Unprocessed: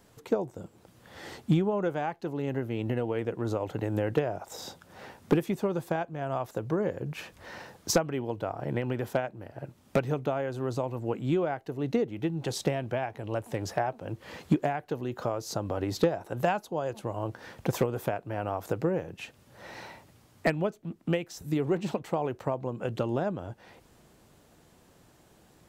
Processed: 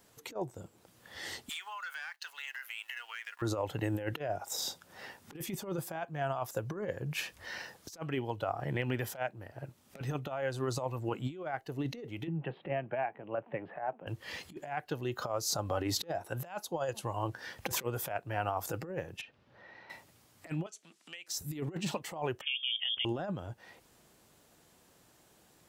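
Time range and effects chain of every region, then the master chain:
1.49–3.42 HPF 1300 Hz 24 dB/oct + sample leveller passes 2 + compressor 10:1, threshold -41 dBFS
12.27–14.07 elliptic band-pass 150–2900 Hz + air absorption 460 m
19.21–19.9 compressor 3:1, threshold -49 dBFS + air absorption 260 m
20.66–21.28 weighting filter ITU-R 468 + compressor 4:1, threshold -48 dBFS
22.41–23.05 notches 50/100/150/200/250/300 Hz + level quantiser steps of 13 dB + inverted band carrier 3400 Hz
whole clip: spectral noise reduction 7 dB; tilt +1.5 dB/oct; negative-ratio compressor -34 dBFS, ratio -0.5

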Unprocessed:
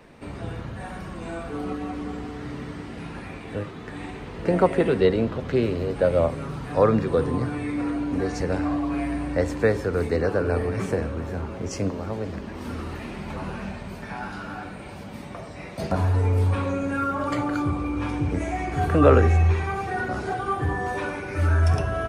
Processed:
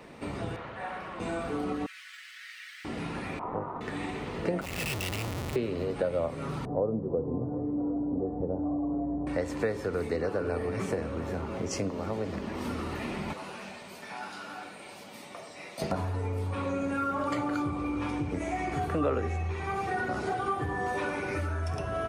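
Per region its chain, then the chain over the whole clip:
0.56–1.2 three-band isolator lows -13 dB, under 450 Hz, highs -14 dB, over 3400 Hz + Doppler distortion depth 0.15 ms
1.86–2.85 median filter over 5 samples + steep high-pass 1600 Hz 48 dB/oct + comb 5.4 ms, depth 37%
3.39–3.81 synth low-pass 960 Hz, resonance Q 10 + AM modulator 260 Hz, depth 85%
4.61–5.56 EQ curve 120 Hz 0 dB, 250 Hz -24 dB, 1300 Hz -24 dB, 2600 Hz +9 dB, 4500 Hz -10 dB + Schmitt trigger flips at -39.5 dBFS
6.65–9.27 inverse Chebyshev low-pass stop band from 3300 Hz, stop band 70 dB + echo 0.744 s -23 dB
13.33–15.82 HPF 1000 Hz 6 dB/oct + bell 1400 Hz -5.5 dB 2.1 oct
whole clip: compressor 3:1, threshold -31 dBFS; low shelf 88 Hz -10.5 dB; notch 1600 Hz, Q 14; gain +2.5 dB

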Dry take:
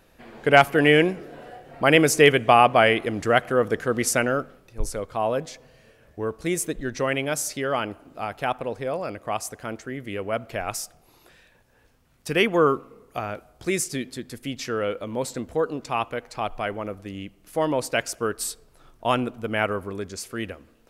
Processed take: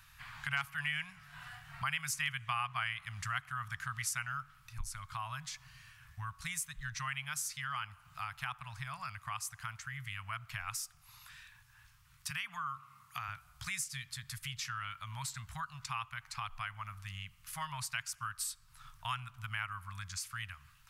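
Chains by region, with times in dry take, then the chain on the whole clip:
12.3–13.28 HPF 130 Hz + compressor 2.5:1, threshold -23 dBFS
whole clip: elliptic band-stop 130–1100 Hz, stop band 60 dB; low shelf 63 Hz -6.5 dB; compressor 2.5:1, threshold -44 dBFS; gain +2.5 dB

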